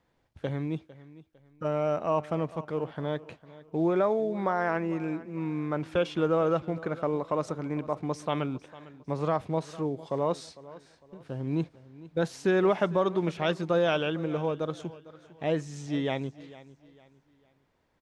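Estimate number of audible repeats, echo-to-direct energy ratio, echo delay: 2, -18.0 dB, 0.453 s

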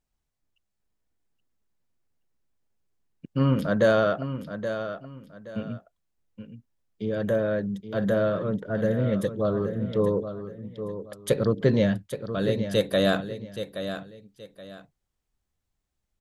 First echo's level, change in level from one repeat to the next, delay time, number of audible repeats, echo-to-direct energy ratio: -10.0 dB, -11.5 dB, 0.824 s, 2, -9.5 dB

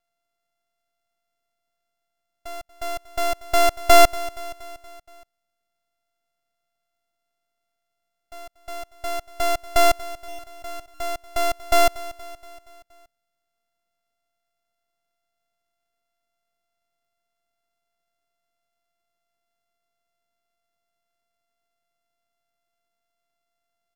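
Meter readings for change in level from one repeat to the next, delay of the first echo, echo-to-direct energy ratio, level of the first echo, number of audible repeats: -5.0 dB, 0.236 s, -16.5 dB, -18.0 dB, 4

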